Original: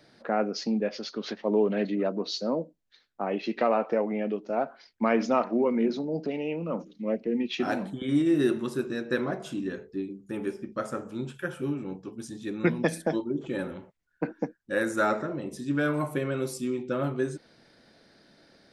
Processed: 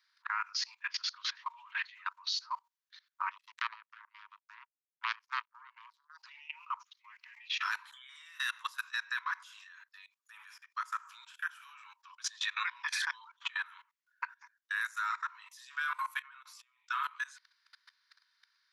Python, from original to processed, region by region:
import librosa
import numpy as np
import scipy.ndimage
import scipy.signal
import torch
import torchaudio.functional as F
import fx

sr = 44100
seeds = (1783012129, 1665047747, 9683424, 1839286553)

y = fx.chain(x, sr, fx.low_shelf(hz=120.0, db=-12.0),
    fx.power_curve(exponent=3.0),
    fx.band_squash(depth_pct=70), at=(3.31, 6.18))
y = fx.chain(y, sr, fx.lowpass(hz=4700.0, slope=12),
    fx.low_shelf(hz=170.0, db=11.5),
    fx.pre_swell(db_per_s=35.0), at=(12.05, 13.66))
y = fx.chain(y, sr, fx.lowpass(hz=1600.0, slope=6),
    fx.over_compress(threshold_db=-38.0, ratio=-1.0), at=(16.22, 16.87))
y = scipy.signal.sosfilt(scipy.signal.cheby1(8, 1.0, 950.0, 'highpass', fs=sr, output='sos'), y)
y = fx.peak_eq(y, sr, hz=8600.0, db=-11.5, octaves=0.23)
y = fx.level_steps(y, sr, step_db=21)
y = F.gain(torch.from_numpy(y), 8.5).numpy()